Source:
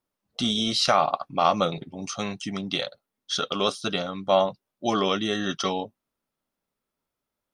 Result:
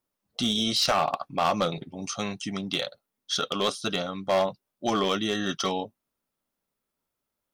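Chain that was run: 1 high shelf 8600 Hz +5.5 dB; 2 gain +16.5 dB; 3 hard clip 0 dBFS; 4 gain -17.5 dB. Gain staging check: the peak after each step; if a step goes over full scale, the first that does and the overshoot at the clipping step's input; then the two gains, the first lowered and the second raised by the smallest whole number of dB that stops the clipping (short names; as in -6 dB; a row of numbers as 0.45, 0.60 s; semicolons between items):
-7.5, +9.0, 0.0, -17.5 dBFS; step 2, 9.0 dB; step 2 +7.5 dB, step 4 -8.5 dB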